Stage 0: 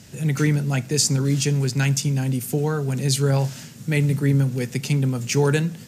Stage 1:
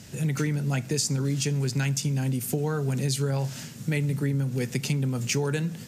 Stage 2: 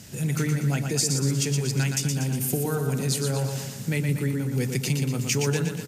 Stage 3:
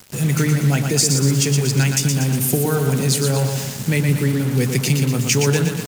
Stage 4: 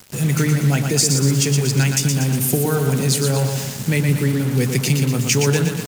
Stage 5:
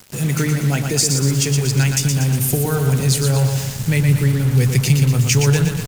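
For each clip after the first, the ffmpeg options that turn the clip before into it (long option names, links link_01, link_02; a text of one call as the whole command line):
ffmpeg -i in.wav -af "acompressor=threshold=-23dB:ratio=6" out.wav
ffmpeg -i in.wav -af "highshelf=frequency=8900:gain=7.5,aecho=1:1:119|238|357|476|595|714|833:0.531|0.276|0.144|0.0746|0.0388|0.0202|0.0105" out.wav
ffmpeg -i in.wav -af "acrusher=bits=5:mix=0:aa=0.5,volume=7.5dB" out.wav
ffmpeg -i in.wav -af anull out.wav
ffmpeg -i in.wav -af "asubboost=boost=9.5:cutoff=81" out.wav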